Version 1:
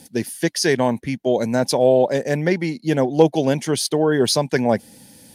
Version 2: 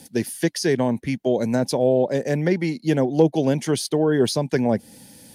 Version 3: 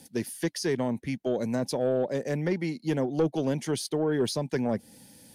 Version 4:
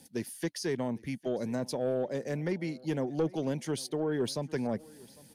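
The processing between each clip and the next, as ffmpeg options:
-filter_complex "[0:a]acrossover=split=480[s0][s1];[s1]acompressor=threshold=0.0447:ratio=3[s2];[s0][s2]amix=inputs=2:normalize=0"
-af "asoftclip=type=tanh:threshold=0.335,volume=0.473"
-af "aecho=1:1:803|1606:0.0708|0.0227,volume=0.596"

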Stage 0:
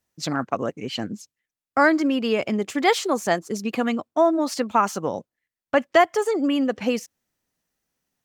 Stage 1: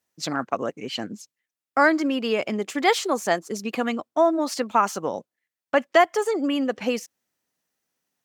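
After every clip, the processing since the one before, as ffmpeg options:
-af "highpass=f=250:p=1"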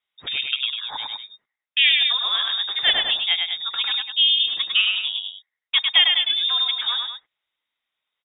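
-af "lowpass=f=3300:t=q:w=0.5098,lowpass=f=3300:t=q:w=0.6013,lowpass=f=3300:t=q:w=0.9,lowpass=f=3300:t=q:w=2.563,afreqshift=-3900,aecho=1:1:102|201.2:0.631|0.316"

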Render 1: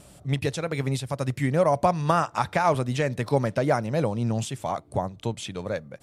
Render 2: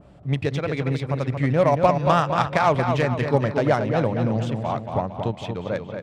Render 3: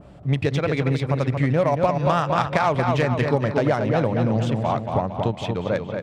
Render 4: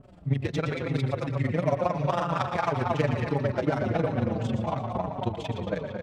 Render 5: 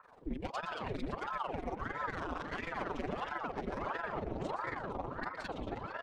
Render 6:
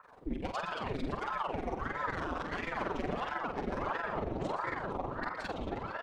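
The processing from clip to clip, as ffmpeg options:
-filter_complex "[0:a]adynamicsmooth=sensitivity=1:basefreq=2200,asplit=2[s0][s1];[s1]adelay=229,lowpass=f=4100:p=1,volume=0.501,asplit=2[s2][s3];[s3]adelay=229,lowpass=f=4100:p=1,volume=0.5,asplit=2[s4][s5];[s5]adelay=229,lowpass=f=4100:p=1,volume=0.5,asplit=2[s6][s7];[s7]adelay=229,lowpass=f=4100:p=1,volume=0.5,asplit=2[s8][s9];[s9]adelay=229,lowpass=f=4100:p=1,volume=0.5,asplit=2[s10][s11];[s11]adelay=229,lowpass=f=4100:p=1,volume=0.5[s12];[s0][s2][s4][s6][s8][s10][s12]amix=inputs=7:normalize=0,adynamicequalizer=threshold=0.0126:dfrequency=2100:dqfactor=0.7:tfrequency=2100:tqfactor=0.7:attack=5:release=100:ratio=0.375:range=3:mode=boostabove:tftype=highshelf,volume=1.33"
-af "acompressor=threshold=0.1:ratio=6,volume=1.58"
-filter_complex "[0:a]tremolo=f=22:d=0.889,asplit=2[s0][s1];[s1]adelay=116.6,volume=0.447,highshelf=f=4000:g=-2.62[s2];[s0][s2]amix=inputs=2:normalize=0,asplit=2[s3][s4];[s4]adelay=4.8,afreqshift=-2.9[s5];[s3][s5]amix=inputs=2:normalize=1"
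-af "alimiter=limit=0.0891:level=0:latency=1:release=124,aeval=exprs='val(0)*sin(2*PI*640*n/s+640*0.85/1.5*sin(2*PI*1.5*n/s))':c=same,volume=0.562"
-filter_complex "[0:a]asplit=2[s0][s1];[s1]adelay=47,volume=0.447[s2];[s0][s2]amix=inputs=2:normalize=0,volume=1.26"

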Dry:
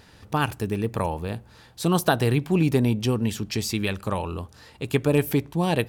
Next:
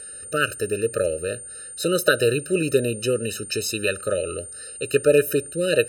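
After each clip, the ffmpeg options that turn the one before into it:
-af "aeval=exprs='val(0)+0.00794*sin(2*PI*9000*n/s)':c=same,lowshelf=f=340:t=q:w=1.5:g=-12,afftfilt=real='re*eq(mod(floor(b*sr/1024/610),2),0)':imag='im*eq(mod(floor(b*sr/1024/610),2),0)':win_size=1024:overlap=0.75,volume=2.11"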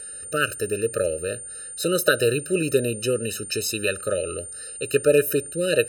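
-af "highshelf=f=11000:g=6,volume=0.891"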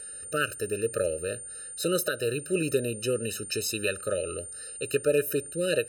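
-af "alimiter=limit=0.316:level=0:latency=1:release=486,volume=0.631"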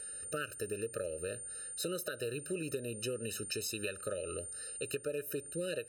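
-af "acompressor=threshold=0.0282:ratio=6,volume=0.668"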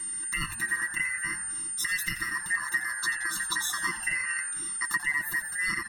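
-filter_complex "[0:a]afftfilt=real='real(if(lt(b,272),68*(eq(floor(b/68),0)*1+eq(floor(b/68),1)*0+eq(floor(b/68),2)*3+eq(floor(b/68),3)*2)+mod(b,68),b),0)':imag='imag(if(lt(b,272),68*(eq(floor(b/68),0)*1+eq(floor(b/68),1)*0+eq(floor(b/68),2)*3+eq(floor(b/68),3)*2)+mod(b,68),b),0)':win_size=2048:overlap=0.75,aecho=1:1:5.9:0.77,asplit=2[s0][s1];[s1]asplit=5[s2][s3][s4][s5][s6];[s2]adelay=87,afreqshift=-130,volume=0.251[s7];[s3]adelay=174,afreqshift=-260,volume=0.129[s8];[s4]adelay=261,afreqshift=-390,volume=0.0653[s9];[s5]adelay=348,afreqshift=-520,volume=0.0335[s10];[s6]adelay=435,afreqshift=-650,volume=0.017[s11];[s7][s8][s9][s10][s11]amix=inputs=5:normalize=0[s12];[s0][s12]amix=inputs=2:normalize=0,volume=1.88"

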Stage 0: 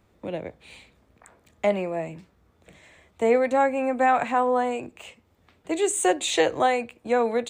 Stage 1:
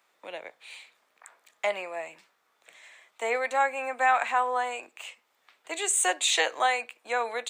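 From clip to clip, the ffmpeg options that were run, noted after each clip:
-af "highpass=1000,volume=1.33"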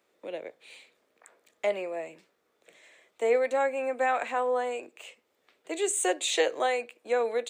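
-af "lowshelf=f=640:t=q:w=1.5:g=10,volume=0.596"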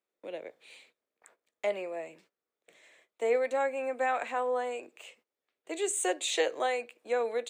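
-af "agate=range=0.158:threshold=0.00112:ratio=16:detection=peak,volume=0.708"

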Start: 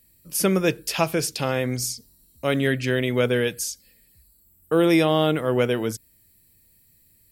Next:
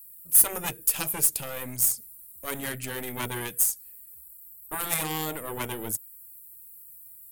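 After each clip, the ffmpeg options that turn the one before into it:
-af "aeval=exprs='0.447*(cos(1*acos(clip(val(0)/0.447,-1,1)))-cos(1*PI/2))+0.0631*(cos(3*acos(clip(val(0)/0.447,-1,1)))-cos(3*PI/2))+0.0891*(cos(4*acos(clip(val(0)/0.447,-1,1)))-cos(4*PI/2))':c=same,afftfilt=real='re*lt(hypot(re,im),0.355)':imag='im*lt(hypot(re,im),0.355)':win_size=1024:overlap=0.75,aexciter=amount=6.2:drive=8.2:freq=7600,volume=0.562"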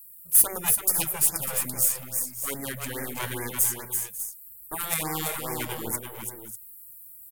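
-filter_complex "[0:a]asplit=2[s0][s1];[s1]aecho=0:1:336|545|596:0.531|0.141|0.282[s2];[s0][s2]amix=inputs=2:normalize=0,afftfilt=real='re*(1-between(b*sr/1024,240*pow(3500/240,0.5+0.5*sin(2*PI*2.4*pts/sr))/1.41,240*pow(3500/240,0.5+0.5*sin(2*PI*2.4*pts/sr))*1.41))':imag='im*(1-between(b*sr/1024,240*pow(3500/240,0.5+0.5*sin(2*PI*2.4*pts/sr))/1.41,240*pow(3500/240,0.5+0.5*sin(2*PI*2.4*pts/sr))*1.41))':win_size=1024:overlap=0.75"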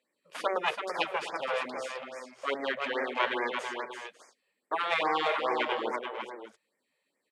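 -af "highpass=f=310:w=0.5412,highpass=f=310:w=1.3066,equalizer=f=320:t=q:w=4:g=-5,equalizer=f=590:t=q:w=4:g=5,equalizer=f=1100:t=q:w=4:g=4,lowpass=f=3500:w=0.5412,lowpass=f=3500:w=1.3066,volume=1.68"

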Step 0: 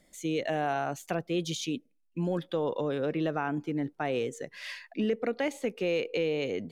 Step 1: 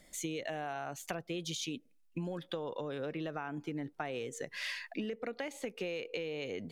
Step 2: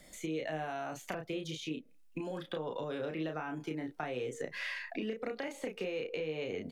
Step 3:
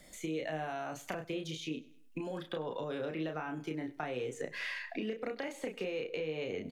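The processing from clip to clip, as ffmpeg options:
-af "equalizer=f=280:w=0.43:g=-4.5,acompressor=threshold=0.01:ratio=12,volume=1.78"
-filter_complex "[0:a]acrossover=split=290|2500[s0][s1][s2];[s0]acompressor=threshold=0.00355:ratio=4[s3];[s1]acompressor=threshold=0.00891:ratio=4[s4];[s2]acompressor=threshold=0.00141:ratio=4[s5];[s3][s4][s5]amix=inputs=3:normalize=0,asplit=2[s6][s7];[s7]adelay=32,volume=0.596[s8];[s6][s8]amix=inputs=2:normalize=0,volume=1.5"
-af "aecho=1:1:99|198|297:0.0944|0.0406|0.0175"

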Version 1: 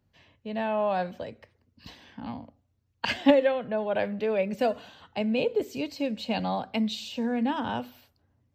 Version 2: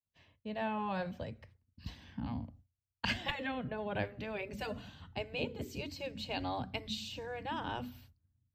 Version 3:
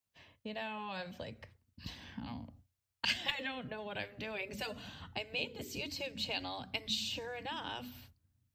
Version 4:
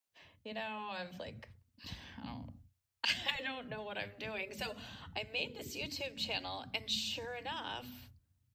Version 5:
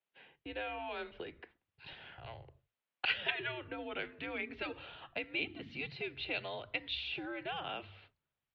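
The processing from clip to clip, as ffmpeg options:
-af "agate=range=0.0224:threshold=0.00158:ratio=3:detection=peak,asubboost=boost=9.5:cutoff=170,afftfilt=real='re*lt(hypot(re,im),0.316)':imag='im*lt(hypot(re,im),0.316)':win_size=1024:overlap=0.75,volume=0.562"
-filter_complex "[0:a]lowshelf=f=180:g=-7,acrossover=split=2400[s0][s1];[s0]acompressor=threshold=0.00447:ratio=6[s2];[s2][s1]amix=inputs=2:normalize=0,volume=2"
-filter_complex "[0:a]acrossover=split=240[s0][s1];[s0]adelay=60[s2];[s2][s1]amix=inputs=2:normalize=0"
-af "highpass=f=290:t=q:w=0.5412,highpass=f=290:t=q:w=1.307,lowpass=f=3600:t=q:w=0.5176,lowpass=f=3600:t=q:w=0.7071,lowpass=f=3600:t=q:w=1.932,afreqshift=-150,volume=1.19"

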